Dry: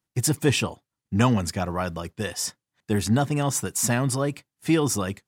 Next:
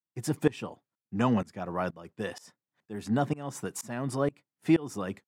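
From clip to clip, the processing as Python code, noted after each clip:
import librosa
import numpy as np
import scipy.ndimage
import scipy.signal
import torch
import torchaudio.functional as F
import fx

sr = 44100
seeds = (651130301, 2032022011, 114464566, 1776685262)

y = scipy.signal.sosfilt(scipy.signal.butter(2, 160.0, 'highpass', fs=sr, output='sos'), x)
y = fx.high_shelf(y, sr, hz=2800.0, db=-12.0)
y = fx.tremolo_shape(y, sr, shape='saw_up', hz=2.1, depth_pct=95)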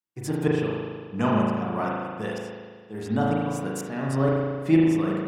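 y = fx.rev_spring(x, sr, rt60_s=1.7, pass_ms=(37,), chirp_ms=60, drr_db=-4.0)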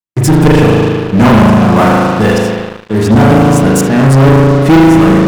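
y = fx.low_shelf(x, sr, hz=200.0, db=8.0)
y = fx.leveller(y, sr, passes=5)
y = F.gain(torch.from_numpy(y), 3.5).numpy()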